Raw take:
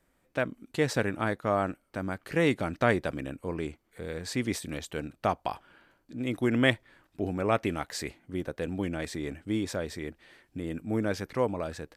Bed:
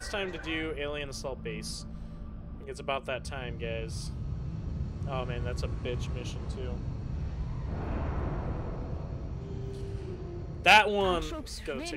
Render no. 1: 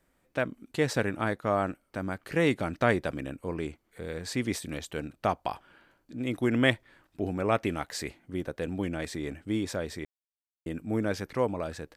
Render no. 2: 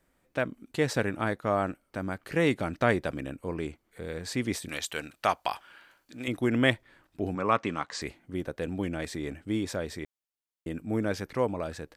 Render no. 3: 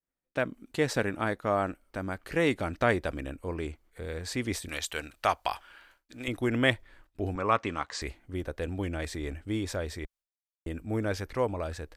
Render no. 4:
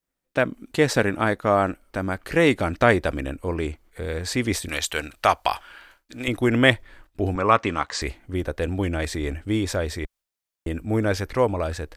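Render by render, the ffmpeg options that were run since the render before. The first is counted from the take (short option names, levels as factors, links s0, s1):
-filter_complex "[0:a]asplit=3[s0][s1][s2];[s0]atrim=end=10.05,asetpts=PTS-STARTPTS,afade=t=out:st=10.046:d=0.004:c=hsin[s3];[s1]atrim=start=10.05:end=10.66,asetpts=PTS-STARTPTS,volume=0[s4];[s2]atrim=start=10.66,asetpts=PTS-STARTPTS,afade=t=in:d=0.004:c=hsin[s5];[s3][s4][s5]concat=n=3:v=0:a=1"
-filter_complex "[0:a]asettb=1/sr,asplit=3[s0][s1][s2];[s0]atrim=end=4.684[s3];[s1]atrim=start=4.68:end=6.28,asetpts=PTS-STARTPTS,afade=t=in:d=0.004:c=qsin,afade=t=out:st=1.596:d=0.004:c=qsin,tiltshelf=f=650:g=-8.5[s4];[s2]atrim=start=6.276[s5];[s3][s4]acrossfade=d=0.004:c1=hsin:c2=qsin[s6];[s6][s5]acrossfade=d=0.004:c1=qsin:c2=hsin,asettb=1/sr,asplit=3[s7][s8][s9];[s7]atrim=end=7.354[s10];[s8]atrim=start=7.35:end=8.02,asetpts=PTS-STARTPTS,afade=t=in:d=0.004:c=qsin,afade=t=out:st=0.666:d=0.004:c=qsin,highpass=130,equalizer=f=360:t=q:w=4:g=-4,equalizer=f=660:t=q:w=4:g=-4,equalizer=f=1100:t=q:w=4:g=10,lowpass=f=7500:w=0.5412,lowpass=f=7500:w=1.3066[s11];[s9]atrim=start=8.016[s12];[s10][s11]acrossfade=d=0.004:c1=hsin:c2=qsin[s13];[s13][s12]acrossfade=d=0.004:c1=qsin:c2=hsin"
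-af "agate=range=0.0224:threshold=0.00158:ratio=3:detection=peak,asubboost=boost=9:cutoff=53"
-af "volume=2.51,alimiter=limit=0.794:level=0:latency=1"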